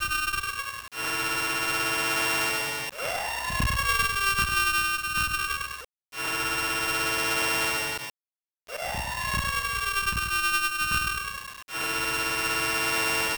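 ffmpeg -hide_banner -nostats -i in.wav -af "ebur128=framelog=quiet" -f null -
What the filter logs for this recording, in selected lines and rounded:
Integrated loudness:
  I:         -25.8 LUFS
  Threshold: -36.0 LUFS
Loudness range:
  LRA:         2.3 LU
  Threshold: -46.0 LUFS
  LRA low:   -27.1 LUFS
  LRA high:  -24.8 LUFS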